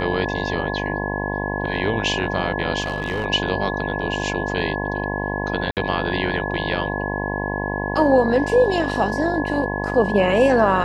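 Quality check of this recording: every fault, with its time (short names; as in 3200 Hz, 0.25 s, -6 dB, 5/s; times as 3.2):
buzz 50 Hz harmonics 21 -26 dBFS
tone 1700 Hz -28 dBFS
2.8–3.26 clipped -18.5 dBFS
5.71–5.77 gap 58 ms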